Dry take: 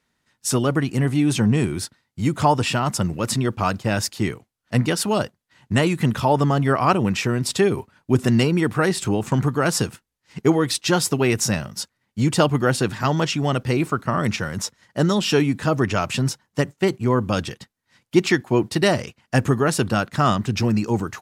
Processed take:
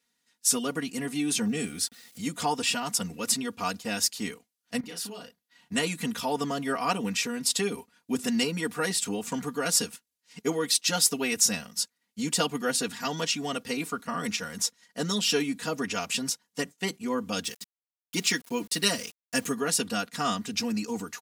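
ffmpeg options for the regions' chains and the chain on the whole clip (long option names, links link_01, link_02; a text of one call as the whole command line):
ffmpeg -i in.wav -filter_complex "[0:a]asettb=1/sr,asplit=3[link_01][link_02][link_03];[link_01]atrim=end=1.474[link_04];[link_02]atrim=start=1.47:end=2.21,asetpts=PTS-STARTPTS,afade=type=in:duration=0.004:curve=qsin,afade=type=out:start_time=0.736:duration=0.004:curve=qsin,acompressor=mode=upward:threshold=-23dB:ratio=2.5:attack=3.2:release=140:knee=2.83:detection=peak,aeval=exprs='val(0)*gte(abs(val(0)),0.00422)':channel_layout=same,asuperstop=centerf=1000:order=8:qfactor=5.2[link_05];[link_03]atrim=start=2.206[link_06];[link_04][link_05]acrossfade=duration=0.004:curve1=hsin:curve2=qsin[link_07];[link_07][link_06]acrossfade=duration=0.004:curve1=qsin:curve2=hsin,asettb=1/sr,asplit=3[link_08][link_09][link_10];[link_08]atrim=end=4.804[link_11];[link_09]atrim=start=4.8:end=5.72,asetpts=PTS-STARTPTS,afade=type=in:duration=0.004:curve=qsin,afade=type=out:start_time=0.916:duration=0.004:curve=qsin,equalizer=frequency=7800:width_type=o:width=1:gain=-6,acompressor=threshold=-32dB:ratio=4:attack=3.2:release=140:knee=1:detection=peak,asplit=2[link_12][link_13];[link_13]adelay=35,volume=-3.5dB[link_14];[link_12][link_14]amix=inputs=2:normalize=0,atrim=end_sample=40572[link_15];[link_10]atrim=start=5.716[link_16];[link_11][link_15]acrossfade=duration=0.004:curve1=hsin:curve2=qsin[link_17];[link_17][link_16]acrossfade=duration=0.004:curve1=qsin:curve2=hsin,asettb=1/sr,asplit=3[link_18][link_19][link_20];[link_18]atrim=end=17.444[link_21];[link_19]atrim=start=17.44:end=19.52,asetpts=PTS-STARTPTS,afade=type=in:duration=0.004:curve=qsin,afade=type=out:start_time=2.076:duration=0.004:curve=qsin,highshelf=frequency=5900:gain=6,bandreject=frequency=770:width=5.3,aeval=exprs='val(0)*gte(abs(val(0)),0.01)':channel_layout=same[link_22];[link_20]atrim=start=19.516[link_23];[link_21][link_22]acrossfade=duration=0.004:curve1=hsin:curve2=qsin[link_24];[link_24][link_23]acrossfade=duration=0.004:curve1=qsin:curve2=hsin,highpass=frequency=770:poles=1,equalizer=frequency=1100:width_type=o:width=2.9:gain=-11,aecho=1:1:4.2:0.98" out.wav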